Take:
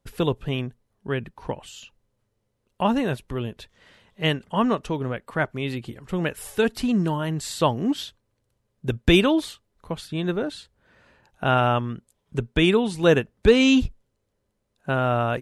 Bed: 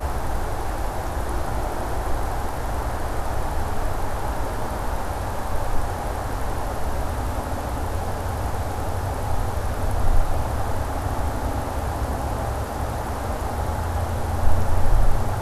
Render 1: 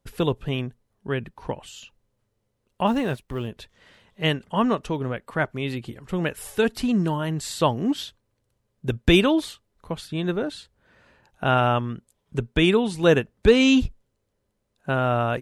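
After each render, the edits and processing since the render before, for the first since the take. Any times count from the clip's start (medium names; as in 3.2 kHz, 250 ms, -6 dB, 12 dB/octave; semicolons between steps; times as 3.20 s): 2.87–3.48 s: companding laws mixed up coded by A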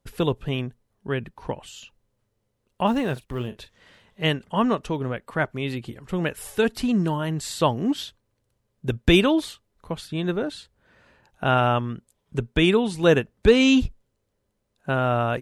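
3.12–4.27 s: doubling 40 ms -13 dB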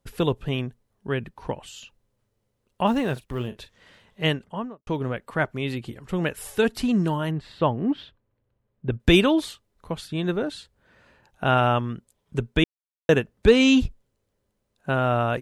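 4.23–4.87 s: studio fade out; 7.31–9.00 s: distance through air 400 m; 12.64–13.09 s: mute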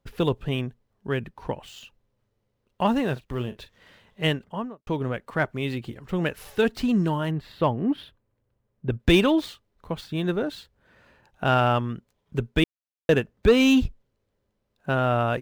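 median filter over 5 samples; saturation -8 dBFS, distortion -22 dB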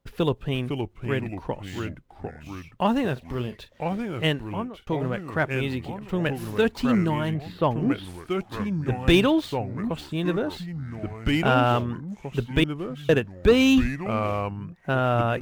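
ever faster or slower copies 468 ms, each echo -3 st, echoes 3, each echo -6 dB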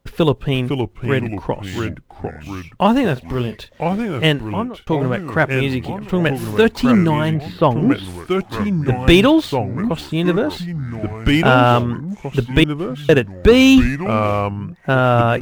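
trim +8.5 dB; peak limiter -2 dBFS, peak gain reduction 2 dB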